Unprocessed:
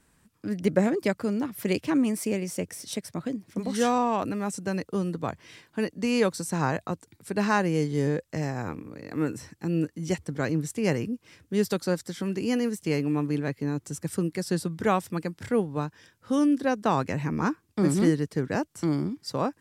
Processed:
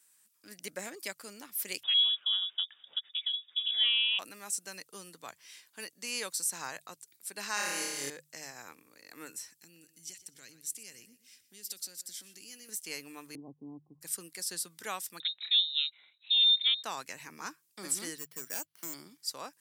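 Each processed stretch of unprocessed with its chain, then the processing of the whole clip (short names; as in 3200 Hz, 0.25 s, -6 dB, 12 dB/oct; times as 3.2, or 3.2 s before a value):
1.83–4.19 bell 1600 Hz -3.5 dB 1.5 oct + inverted band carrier 3600 Hz
7.54–8.1 tone controls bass -5 dB, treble +2 dB + flutter echo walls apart 4.9 m, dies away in 1.4 s
9.55–12.69 bell 880 Hz -14 dB 1.8 oct + compressor 4:1, threshold -34 dBFS + feedback echo 0.122 s, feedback 33%, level -15.5 dB
13.35–14.01 rippled Chebyshev low-pass 1100 Hz, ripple 9 dB + tilt -4.5 dB/oct
15.2–16.84 inverted band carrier 3900 Hz + dynamic EQ 470 Hz, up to -6 dB, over -54 dBFS, Q 1.3
18.18–18.94 hard clip -20 dBFS + careless resampling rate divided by 6×, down filtered, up hold
whole clip: differentiator; notches 50/100/150 Hz; gain +4 dB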